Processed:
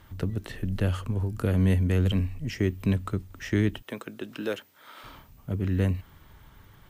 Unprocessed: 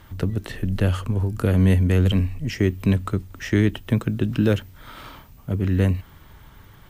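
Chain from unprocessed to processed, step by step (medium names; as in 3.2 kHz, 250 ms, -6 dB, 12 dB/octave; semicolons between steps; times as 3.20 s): 3.82–5.04 s: high-pass 410 Hz 12 dB/octave; trim -5.5 dB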